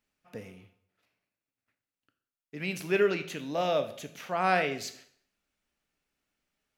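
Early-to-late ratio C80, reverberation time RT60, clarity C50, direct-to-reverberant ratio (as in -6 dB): 16.0 dB, 0.60 s, 13.0 dB, 9.0 dB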